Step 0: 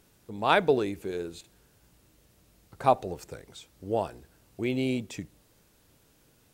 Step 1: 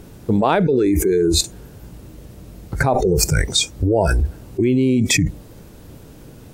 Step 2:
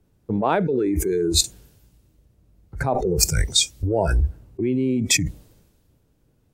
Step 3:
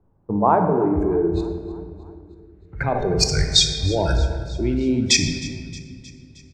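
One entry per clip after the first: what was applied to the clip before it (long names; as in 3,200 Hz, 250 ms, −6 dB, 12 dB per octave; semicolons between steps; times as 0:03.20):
noise reduction from a noise print of the clip's start 20 dB; tilt shelving filter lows +6.5 dB, about 790 Hz; envelope flattener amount 100%; level −1 dB
multiband upward and downward expander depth 70%; level −5.5 dB
low-pass filter sweep 1,000 Hz → 5,100 Hz, 0:02.14–0:03.33; repeating echo 312 ms, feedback 59%, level −20 dB; on a send at −5 dB: convolution reverb RT60 1.7 s, pre-delay 22 ms; on the sum: level −1 dB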